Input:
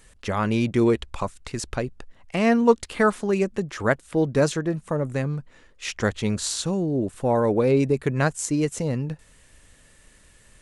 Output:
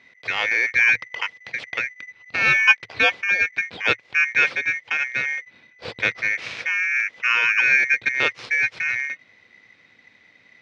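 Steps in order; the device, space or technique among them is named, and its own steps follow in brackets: ring modulator pedal into a guitar cabinet (polarity switched at an audio rate 2 kHz; cabinet simulation 85–4000 Hz, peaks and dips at 110 Hz +7 dB, 490 Hz +8 dB, 2.4 kHz +6 dB); trim -1 dB

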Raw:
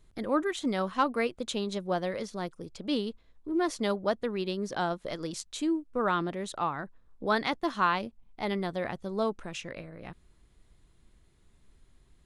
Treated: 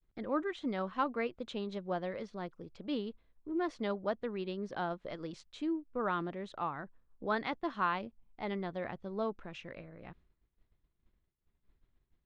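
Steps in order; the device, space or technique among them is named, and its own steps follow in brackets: hearing-loss simulation (low-pass 3.1 kHz 12 dB/octave; expander -51 dBFS); trim -6 dB

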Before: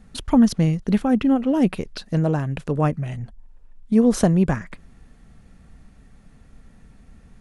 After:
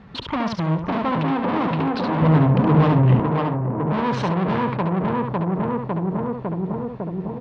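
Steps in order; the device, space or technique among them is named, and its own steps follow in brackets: analogue delay pedal into a guitar amplifier (bucket-brigade echo 553 ms, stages 4096, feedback 65%, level -4 dB; valve stage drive 30 dB, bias 0.35; cabinet simulation 100–3900 Hz, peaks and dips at 120 Hz +4 dB, 240 Hz -4 dB, 410 Hz +3 dB, 1 kHz +9 dB); 2.22–3.20 s: bass shelf 290 Hz +10 dB; delay 70 ms -5.5 dB; trim +9 dB

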